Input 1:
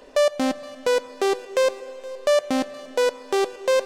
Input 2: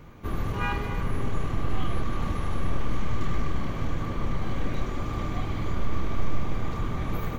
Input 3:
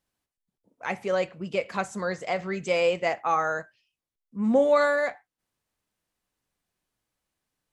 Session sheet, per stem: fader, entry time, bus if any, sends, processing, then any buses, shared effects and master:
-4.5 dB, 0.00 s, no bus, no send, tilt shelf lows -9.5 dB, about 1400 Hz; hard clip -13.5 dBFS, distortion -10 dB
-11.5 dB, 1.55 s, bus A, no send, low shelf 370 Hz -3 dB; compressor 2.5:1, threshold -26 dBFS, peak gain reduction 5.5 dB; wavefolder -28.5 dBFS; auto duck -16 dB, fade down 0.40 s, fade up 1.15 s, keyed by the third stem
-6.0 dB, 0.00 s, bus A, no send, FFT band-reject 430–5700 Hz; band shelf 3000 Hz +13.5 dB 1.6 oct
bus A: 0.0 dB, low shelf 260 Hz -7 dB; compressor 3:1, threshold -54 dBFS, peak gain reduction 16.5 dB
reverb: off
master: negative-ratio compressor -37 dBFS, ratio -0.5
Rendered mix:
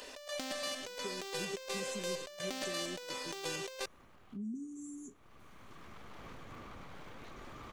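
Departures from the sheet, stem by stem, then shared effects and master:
stem 2: entry 1.55 s -> 2.50 s; stem 3 -6.0 dB -> +4.0 dB

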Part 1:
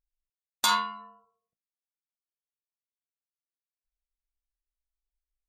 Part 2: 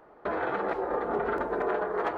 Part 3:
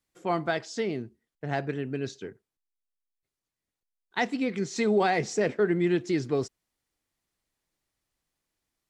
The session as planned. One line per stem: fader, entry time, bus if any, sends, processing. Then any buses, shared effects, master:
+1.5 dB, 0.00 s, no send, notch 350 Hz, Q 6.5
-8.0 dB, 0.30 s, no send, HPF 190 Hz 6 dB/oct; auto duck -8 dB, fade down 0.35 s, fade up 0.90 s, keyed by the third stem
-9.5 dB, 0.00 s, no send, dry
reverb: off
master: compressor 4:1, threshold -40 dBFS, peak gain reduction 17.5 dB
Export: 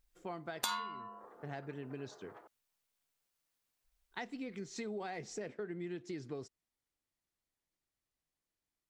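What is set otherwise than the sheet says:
stem 1 +1.5 dB -> +11.5 dB; stem 2 -8.0 dB -> -18.5 dB

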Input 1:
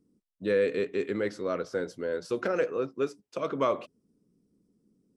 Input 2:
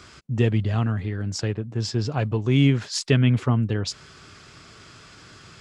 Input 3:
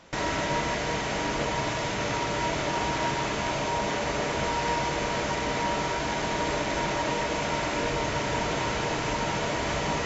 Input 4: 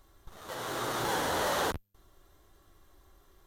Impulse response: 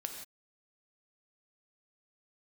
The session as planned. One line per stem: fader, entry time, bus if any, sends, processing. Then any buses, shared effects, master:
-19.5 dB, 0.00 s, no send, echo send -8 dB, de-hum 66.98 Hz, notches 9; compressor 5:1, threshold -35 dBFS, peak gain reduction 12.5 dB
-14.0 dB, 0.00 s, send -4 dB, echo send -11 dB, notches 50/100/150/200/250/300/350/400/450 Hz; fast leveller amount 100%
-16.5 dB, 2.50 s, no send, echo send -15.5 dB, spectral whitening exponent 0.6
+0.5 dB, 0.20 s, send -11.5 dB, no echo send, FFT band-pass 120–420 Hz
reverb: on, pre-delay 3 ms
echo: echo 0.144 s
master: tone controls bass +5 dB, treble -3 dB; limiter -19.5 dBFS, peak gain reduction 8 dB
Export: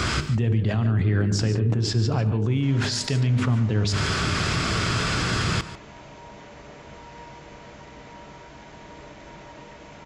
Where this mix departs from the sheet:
stem 3: missing spectral whitening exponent 0.6; master: missing limiter -19.5 dBFS, peak gain reduction 8 dB

